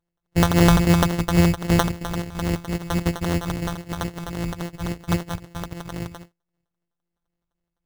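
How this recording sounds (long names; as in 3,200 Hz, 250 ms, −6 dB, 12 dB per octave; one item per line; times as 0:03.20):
a buzz of ramps at a fixed pitch in blocks of 256 samples
phaser sweep stages 2, 3.7 Hz, lowest notch 320–2,100 Hz
aliases and images of a low sample rate 2,400 Hz, jitter 0%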